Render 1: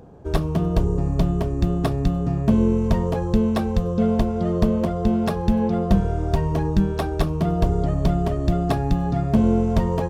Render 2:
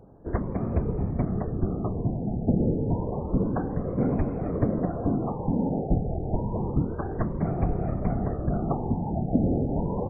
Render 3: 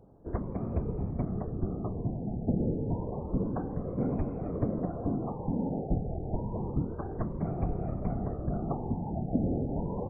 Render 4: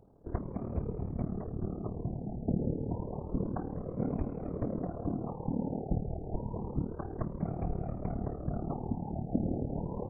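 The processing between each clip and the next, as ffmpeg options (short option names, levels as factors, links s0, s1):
-af "adynamicsmooth=sensitivity=6:basefreq=1500,afftfilt=real='hypot(re,im)*cos(2*PI*random(0))':imag='hypot(re,im)*sin(2*PI*random(1))':win_size=512:overlap=0.75,afftfilt=real='re*lt(b*sr/1024,870*pow(2600/870,0.5+0.5*sin(2*PI*0.29*pts/sr)))':imag='im*lt(b*sr/1024,870*pow(2600/870,0.5+0.5*sin(2*PI*0.29*pts/sr)))':win_size=1024:overlap=0.75"
-af "equalizer=f=1800:w=2.3:g=-7,volume=0.531"
-af "tremolo=f=37:d=0.71"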